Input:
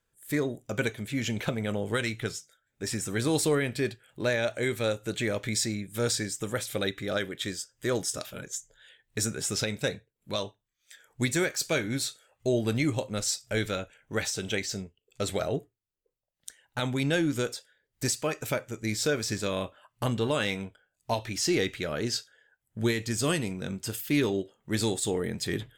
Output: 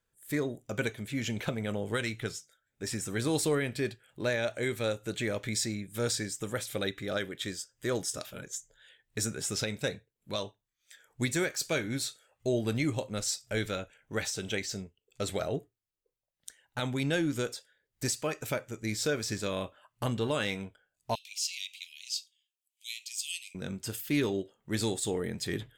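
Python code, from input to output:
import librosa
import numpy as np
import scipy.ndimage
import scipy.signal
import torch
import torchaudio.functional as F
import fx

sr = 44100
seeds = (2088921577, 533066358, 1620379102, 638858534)

y = fx.steep_highpass(x, sr, hz=2400.0, slope=72, at=(21.15, 23.55))
y = fx.quant_float(y, sr, bits=8)
y = F.gain(torch.from_numpy(y), -3.0).numpy()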